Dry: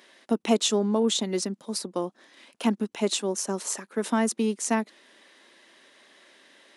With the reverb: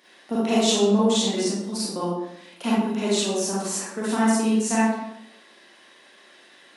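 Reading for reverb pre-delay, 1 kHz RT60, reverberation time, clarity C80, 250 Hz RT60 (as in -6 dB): 33 ms, 0.80 s, 0.85 s, 3.0 dB, 0.90 s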